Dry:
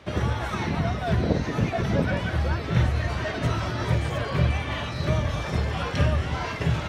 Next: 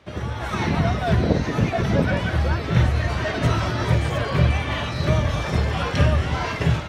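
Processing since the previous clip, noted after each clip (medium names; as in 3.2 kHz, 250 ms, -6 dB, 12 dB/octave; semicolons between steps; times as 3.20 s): level rider gain up to 11.5 dB; trim -4.5 dB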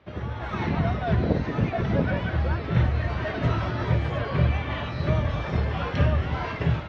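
distance through air 210 m; trim -3.5 dB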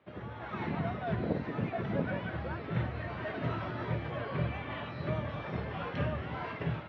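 band-pass 130–3500 Hz; trim -7.5 dB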